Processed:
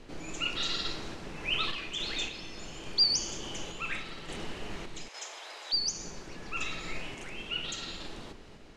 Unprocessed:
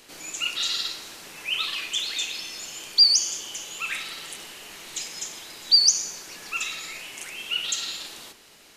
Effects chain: tilt -4 dB/oct; 5.08–5.73 HPF 570 Hz 24 dB/oct; random-step tremolo; LPF 8100 Hz 12 dB/oct; gain +3 dB

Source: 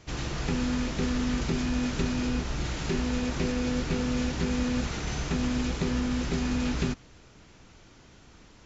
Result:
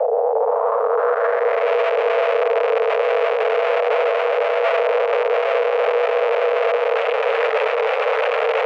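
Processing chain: wavefolder -26.5 dBFS; tone controls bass +12 dB, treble -11 dB; negative-ratio compressor -43 dBFS, ratio -1; Schmitt trigger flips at -50 dBFS; bell 820 Hz +4 dB 1 oct; low-pass sweep 290 Hz -> 2100 Hz, 0.04–1.7; frequency shift +420 Hz; on a send: dark delay 0.347 s, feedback 70%, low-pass 940 Hz, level -5 dB; on the sum: maximiser +29 dB; gain -9 dB

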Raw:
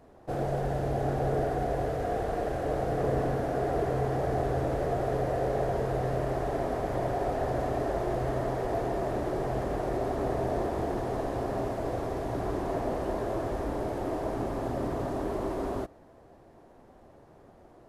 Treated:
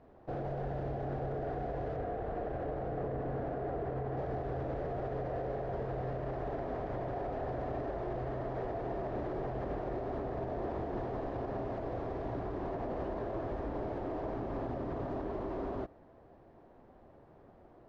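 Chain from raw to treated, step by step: 1.96–4.17 high shelf 4100 Hz -10.5 dB; limiter -25.5 dBFS, peak gain reduction 8.5 dB; air absorption 230 m; gain -3 dB

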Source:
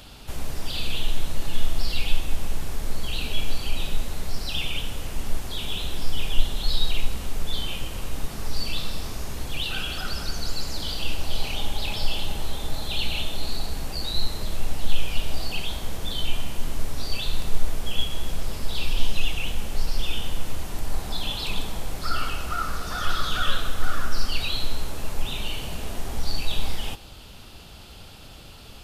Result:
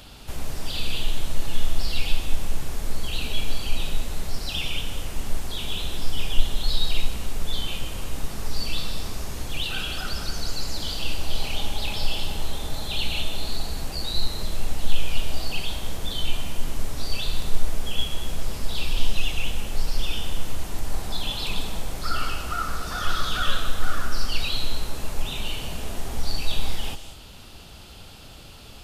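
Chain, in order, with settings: on a send: bell 7500 Hz +12.5 dB 1.5 oct + reverb, pre-delay 0.11 s, DRR 14 dB

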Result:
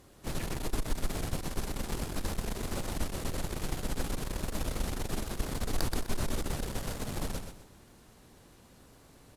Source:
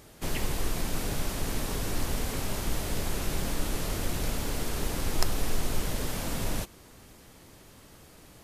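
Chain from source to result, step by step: feedback echo 0.114 s, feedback 30%, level -6 dB; varispeed -10%; in parallel at -6 dB: sample-and-hold 14×; on the sum: added harmonics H 8 -19 dB, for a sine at -2.5 dBFS; gain -8 dB

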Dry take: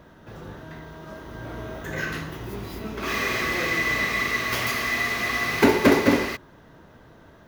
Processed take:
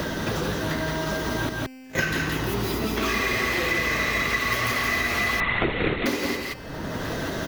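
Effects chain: bin magnitudes rounded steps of 15 dB; 1.49–1.99 gate -27 dBFS, range -50 dB; in parallel at +1.5 dB: compressor, threshold -32 dBFS, peak gain reduction 18.5 dB; on the sum: resonator 260 Hz, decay 1.3 s, mix 60%; on a send: echo 0.17 s -4.5 dB; 5.4–6.06 on the sum: LPC vocoder at 8 kHz whisper; three-band squash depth 100%; gain +5 dB

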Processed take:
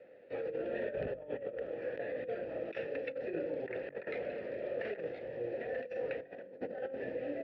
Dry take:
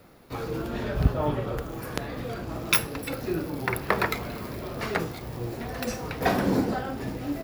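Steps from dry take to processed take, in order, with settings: vowel filter e; high shelf 4200 Hz -8 dB; negative-ratio compressor -43 dBFS, ratio -0.5; air absorption 180 m; de-hum 47.32 Hz, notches 8; gain +5.5 dB

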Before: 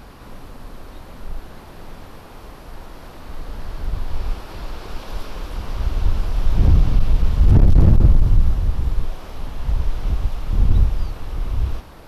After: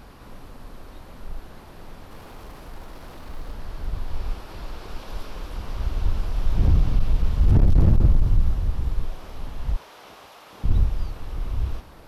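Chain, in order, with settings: 2.11–3.52 G.711 law mismatch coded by mu; 9.76–10.64 HPF 530 Hz 12 dB/oct; gain -4.5 dB

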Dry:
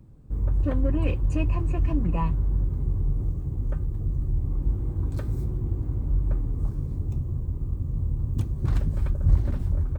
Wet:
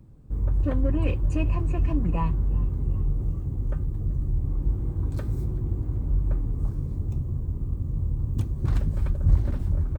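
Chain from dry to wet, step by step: frequency-shifting echo 0.384 s, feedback 59%, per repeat +54 Hz, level -22.5 dB

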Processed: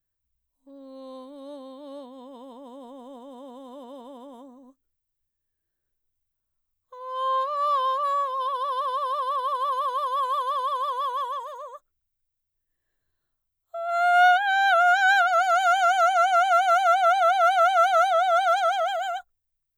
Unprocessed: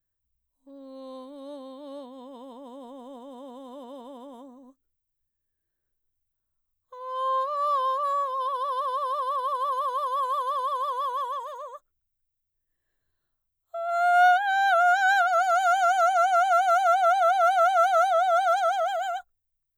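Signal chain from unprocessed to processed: dynamic EQ 2600 Hz, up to +7 dB, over -40 dBFS, Q 1

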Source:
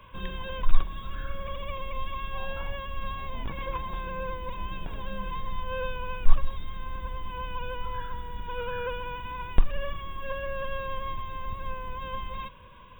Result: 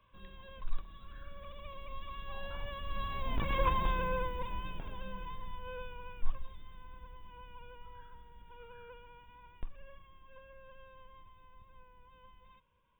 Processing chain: Doppler pass-by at 3.73, 8 m/s, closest 2.8 m; gain +3.5 dB

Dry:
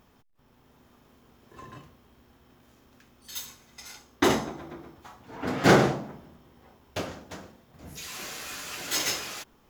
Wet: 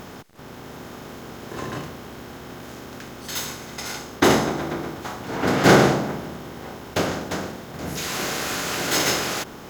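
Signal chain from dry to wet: per-bin compression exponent 0.6; gain +3 dB

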